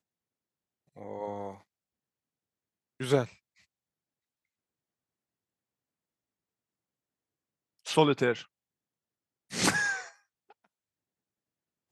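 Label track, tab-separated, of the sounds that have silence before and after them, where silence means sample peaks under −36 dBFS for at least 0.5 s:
1.010000	1.520000	sound
3.000000	3.250000	sound
7.870000	8.410000	sound
9.520000	10.040000	sound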